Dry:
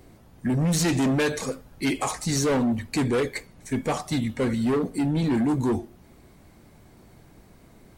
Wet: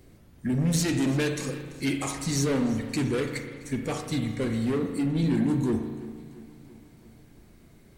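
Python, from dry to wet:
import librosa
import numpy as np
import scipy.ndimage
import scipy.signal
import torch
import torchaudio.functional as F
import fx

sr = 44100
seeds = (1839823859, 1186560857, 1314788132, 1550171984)

p1 = fx.peak_eq(x, sr, hz=860.0, db=-7.0, octaves=1.3)
p2 = p1 + fx.echo_feedback(p1, sr, ms=338, feedback_pct=60, wet_db=-19.0, dry=0)
p3 = fx.rev_spring(p2, sr, rt60_s=1.5, pass_ms=(36,), chirp_ms=25, drr_db=5.5)
y = p3 * 10.0 ** (-2.5 / 20.0)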